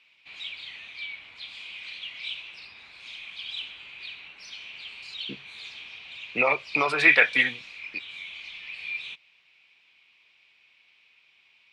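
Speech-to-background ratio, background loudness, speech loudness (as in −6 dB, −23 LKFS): 16.5 dB, −37.5 LKFS, −21.0 LKFS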